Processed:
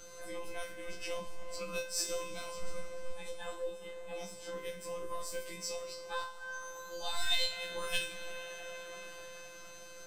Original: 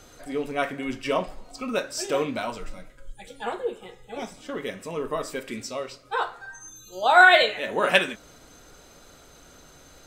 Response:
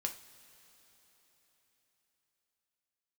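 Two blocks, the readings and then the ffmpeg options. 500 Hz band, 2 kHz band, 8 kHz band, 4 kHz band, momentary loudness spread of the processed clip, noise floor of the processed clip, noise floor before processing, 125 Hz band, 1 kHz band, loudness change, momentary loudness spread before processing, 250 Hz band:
-13.5 dB, -19.0 dB, -2.0 dB, -7.5 dB, 11 LU, -50 dBFS, -52 dBFS, -12.5 dB, -20.0 dB, -15.5 dB, 21 LU, -19.5 dB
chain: -filter_complex "[0:a]aeval=exprs='if(lt(val(0),0),0.708*val(0),val(0))':c=same[a];[1:a]atrim=start_sample=2205[b];[a][b]afir=irnorm=-1:irlink=0,afftfilt=real='hypot(re,im)*cos(PI*b)':imag='0':win_size=1024:overlap=0.75,acrossover=split=110|4100[c][d][e];[d]acompressor=threshold=-45dB:ratio=4[f];[c][f][e]amix=inputs=3:normalize=0,afftfilt=real='re*1.73*eq(mod(b,3),0)':imag='im*1.73*eq(mod(b,3),0)':win_size=2048:overlap=0.75,volume=5.5dB"

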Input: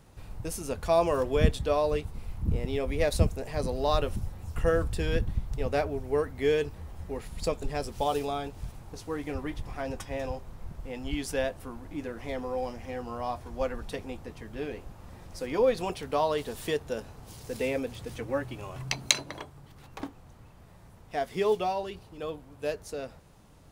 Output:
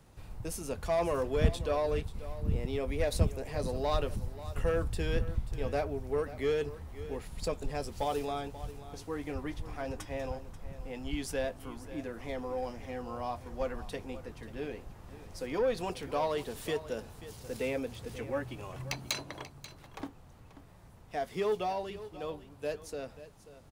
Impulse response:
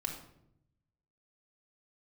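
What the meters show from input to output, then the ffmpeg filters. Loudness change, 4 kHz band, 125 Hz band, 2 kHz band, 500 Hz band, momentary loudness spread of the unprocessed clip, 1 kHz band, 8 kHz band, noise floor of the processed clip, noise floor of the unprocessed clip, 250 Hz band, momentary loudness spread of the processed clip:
-4.5 dB, -6.5 dB, -3.0 dB, -4.5 dB, -4.5 dB, 16 LU, -4.5 dB, -7.0 dB, -54 dBFS, -53 dBFS, -4.0 dB, 14 LU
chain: -filter_complex "[0:a]acrossover=split=140[a][b];[b]asoftclip=type=tanh:threshold=-20dB[c];[a][c]amix=inputs=2:normalize=0,aecho=1:1:536:0.178,volume=-3dB"

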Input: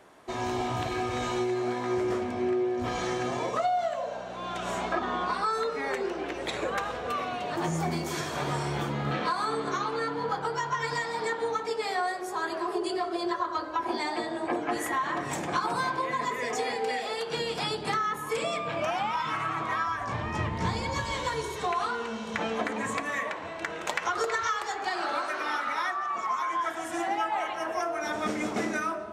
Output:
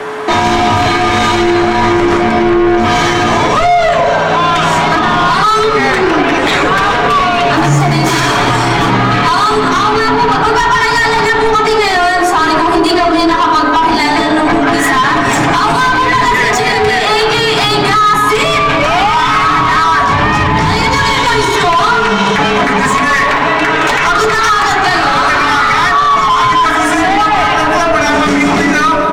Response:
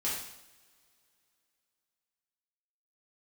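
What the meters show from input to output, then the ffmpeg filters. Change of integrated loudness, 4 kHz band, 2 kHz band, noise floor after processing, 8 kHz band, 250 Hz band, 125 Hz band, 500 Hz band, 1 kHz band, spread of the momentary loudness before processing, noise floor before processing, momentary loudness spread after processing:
+20.5 dB, +22.5 dB, +22.0 dB, -12 dBFS, +19.0 dB, +20.5 dB, +20.5 dB, +18.0 dB, +21.0 dB, 3 LU, -37 dBFS, 2 LU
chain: -filter_complex "[0:a]bandreject=f=143.5:t=h:w=4,bandreject=f=287:t=h:w=4,bandreject=f=430.5:t=h:w=4,bandreject=f=574:t=h:w=4,bandreject=f=717.5:t=h:w=4,bandreject=f=861:t=h:w=4,bandreject=f=1.0045k:t=h:w=4,bandreject=f=1.148k:t=h:w=4,bandreject=f=1.2915k:t=h:w=4,bandreject=f=1.435k:t=h:w=4,bandreject=f=1.5785k:t=h:w=4,bandreject=f=1.722k:t=h:w=4,bandreject=f=1.8655k:t=h:w=4,bandreject=f=2.009k:t=h:w=4,bandreject=f=2.1525k:t=h:w=4,bandreject=f=2.296k:t=h:w=4,bandreject=f=2.4395k:t=h:w=4,bandreject=f=2.583k:t=h:w=4,bandreject=f=2.7265k:t=h:w=4,bandreject=f=2.87k:t=h:w=4,bandreject=f=3.0135k:t=h:w=4,bandreject=f=3.157k:t=h:w=4,bandreject=f=3.3005k:t=h:w=4,bandreject=f=3.444k:t=h:w=4,bandreject=f=3.5875k:t=h:w=4,bandreject=f=3.731k:t=h:w=4,bandreject=f=3.8745k:t=h:w=4,bandreject=f=4.018k:t=h:w=4,bandreject=f=4.1615k:t=h:w=4,bandreject=f=4.305k:t=h:w=4,bandreject=f=4.4485k:t=h:w=4,asplit=2[a][b];[b]highpass=f=720:p=1,volume=21dB,asoftclip=type=tanh:threshold=-15.5dB[c];[a][c]amix=inputs=2:normalize=0,lowpass=f=5.1k:p=1,volume=-6dB,equalizer=f=530:t=o:w=0.94:g=-9.5,aeval=exprs='val(0)+0.00447*sin(2*PI*450*n/s)':c=same,afreqshift=-21,highshelf=f=2.6k:g=-11.5,aecho=1:1:7.1:0.34,asplit=2[d][e];[e]adelay=180,highpass=300,lowpass=3.4k,asoftclip=type=hard:threshold=-25.5dB,volume=-18dB[f];[d][f]amix=inputs=2:normalize=0,acrossover=split=350|3000[g][h][i];[h]acompressor=threshold=-33dB:ratio=2.5[j];[g][j][i]amix=inputs=3:normalize=0,alimiter=level_in=25.5dB:limit=-1dB:release=50:level=0:latency=1,volume=-1dB"

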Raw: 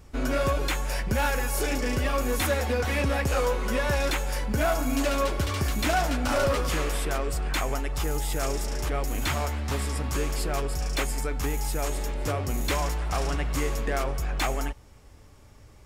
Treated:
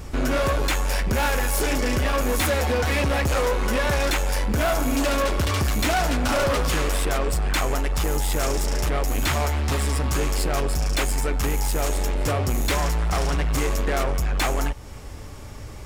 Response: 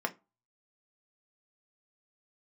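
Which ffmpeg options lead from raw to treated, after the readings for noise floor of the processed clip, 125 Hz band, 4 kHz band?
-36 dBFS, +4.5 dB, +5.0 dB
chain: -filter_complex "[0:a]asplit=2[a][b];[b]acompressor=threshold=-37dB:ratio=6,volume=3dB[c];[a][c]amix=inputs=2:normalize=0,asoftclip=type=tanh:threshold=-25dB,volume=6.5dB"

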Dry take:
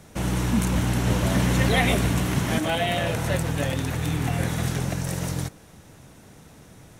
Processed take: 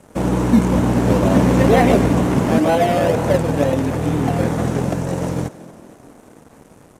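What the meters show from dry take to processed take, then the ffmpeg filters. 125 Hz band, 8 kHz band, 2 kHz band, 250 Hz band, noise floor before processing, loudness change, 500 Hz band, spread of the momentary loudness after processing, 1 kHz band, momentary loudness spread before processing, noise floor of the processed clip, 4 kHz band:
+4.5 dB, -1.0 dB, +1.0 dB, +10.0 dB, -50 dBFS, +7.5 dB, +12.0 dB, 9 LU, +9.0 dB, 8 LU, -48 dBFS, -2.5 dB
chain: -filter_complex "[0:a]equalizer=f=250:t=o:w=1:g=8,equalizer=f=500:t=o:w=1:g=9,equalizer=f=1k:t=o:w=1:g=6,equalizer=f=4k:t=o:w=1:g=-9,equalizer=f=8k:t=o:w=1:g=6,acrossover=split=6400[a][b];[b]acompressor=threshold=-46dB:ratio=4:attack=1:release=60[c];[a][c]amix=inputs=2:normalize=0,asplit=2[d][e];[e]acrusher=samples=18:mix=1:aa=0.000001:lfo=1:lforange=10.8:lforate=2.1,volume=-10dB[f];[d][f]amix=inputs=2:normalize=0,aeval=exprs='sgn(val(0))*max(abs(val(0))-0.0075,0)':c=same,asplit=2[g][h];[h]asplit=5[i][j][k][l][m];[i]adelay=228,afreqshift=39,volume=-18.5dB[n];[j]adelay=456,afreqshift=78,volume=-22.9dB[o];[k]adelay=684,afreqshift=117,volume=-27.4dB[p];[l]adelay=912,afreqshift=156,volume=-31.8dB[q];[m]adelay=1140,afreqshift=195,volume=-36.2dB[r];[n][o][p][q][r]amix=inputs=5:normalize=0[s];[g][s]amix=inputs=2:normalize=0,aresample=32000,aresample=44100"

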